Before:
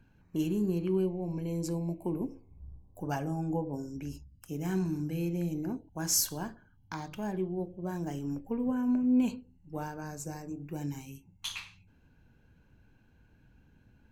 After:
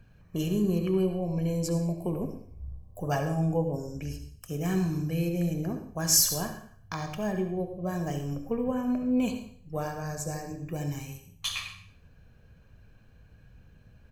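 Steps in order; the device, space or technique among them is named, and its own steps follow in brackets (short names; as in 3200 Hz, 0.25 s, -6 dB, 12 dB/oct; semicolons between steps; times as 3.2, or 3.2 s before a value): microphone above a desk (comb 1.7 ms, depth 55%; reverb RT60 0.55 s, pre-delay 62 ms, DRR 7.5 dB); gain +4.5 dB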